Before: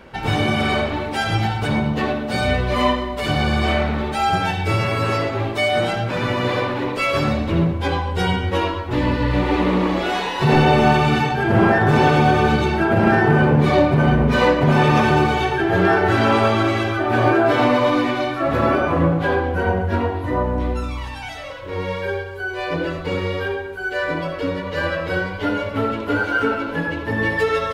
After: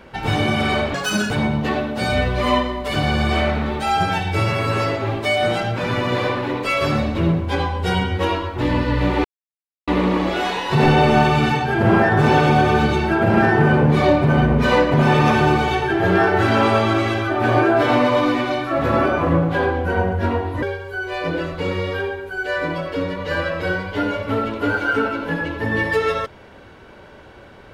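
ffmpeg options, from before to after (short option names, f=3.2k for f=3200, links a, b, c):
-filter_complex "[0:a]asplit=5[a][b][c][d][e];[a]atrim=end=0.944[f];[b]atrim=start=0.94:end=1.63,asetpts=PTS-STARTPTS,asetrate=83349,aresample=44100[g];[c]atrim=start=1.626:end=9.57,asetpts=PTS-STARTPTS,afade=t=out:st=7.94:d=0.004:c=hsin,apad=pad_dur=0.63[h];[d]atrim=start=9.57:end=20.322,asetpts=PTS-STARTPTS,afade=t=in:d=0.004:c=hsin[i];[e]atrim=start=22.088[j];[f][g]acrossfade=d=0.004:c1=hsin:c2=hsin[k];[h][i]concat=n=2:v=0:a=1[l];[k][l]acrossfade=d=0.004:c1=hsin:c2=hsin[m];[m][j]acrossfade=d=0.004:c1=hsin:c2=hsin"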